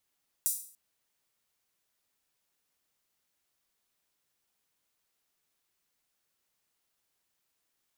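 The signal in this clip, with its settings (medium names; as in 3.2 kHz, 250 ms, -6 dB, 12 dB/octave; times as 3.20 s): open hi-hat length 0.29 s, high-pass 8.3 kHz, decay 0.48 s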